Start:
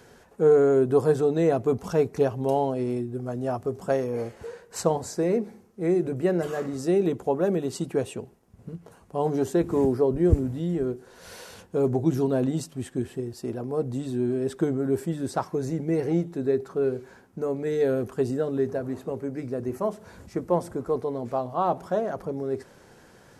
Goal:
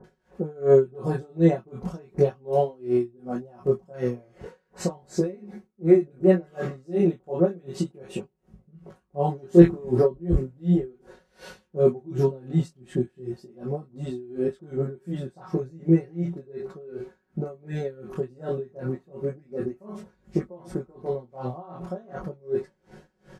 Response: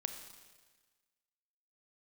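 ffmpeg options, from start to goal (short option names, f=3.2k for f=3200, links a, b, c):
-filter_complex "[0:a]lowpass=f=2.9k:p=1,lowshelf=f=180:g=4.5,acrossover=split=1000[a][b];[b]adelay=40[c];[a][c]amix=inputs=2:normalize=0,asplit=2[d][e];[e]alimiter=limit=-15dB:level=0:latency=1:release=183,volume=0dB[f];[d][f]amix=inputs=2:normalize=0,flanger=delay=19:depth=5.1:speed=0.35,asplit=3[g][h][i];[g]afade=t=out:st=9.42:d=0.02[j];[h]acontrast=35,afade=t=in:st=9.42:d=0.02,afade=t=out:st=10.06:d=0.02[k];[i]afade=t=in:st=10.06:d=0.02[l];[j][k][l]amix=inputs=3:normalize=0,aecho=1:1:5.4:0.77,aeval=exprs='val(0)*pow(10,-27*(0.5-0.5*cos(2*PI*2.7*n/s))/20)':c=same"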